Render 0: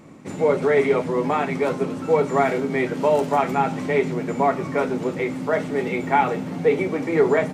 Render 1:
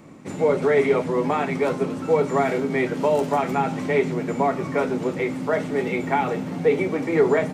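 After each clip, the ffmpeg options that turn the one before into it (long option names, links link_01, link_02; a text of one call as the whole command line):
ffmpeg -i in.wav -filter_complex "[0:a]acrossover=split=490|3000[link_01][link_02][link_03];[link_02]acompressor=threshold=-20dB:ratio=6[link_04];[link_01][link_04][link_03]amix=inputs=3:normalize=0" out.wav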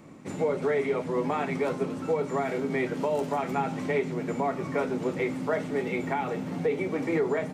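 ffmpeg -i in.wav -af "alimiter=limit=-14dB:level=0:latency=1:release=405,volume=-3.5dB" out.wav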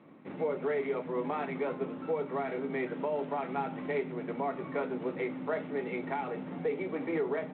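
ffmpeg -i in.wav -af "highpass=180,lowpass=2800,volume=-5dB" -ar 8000 -c:a adpcm_g726 -b:a 32k out.wav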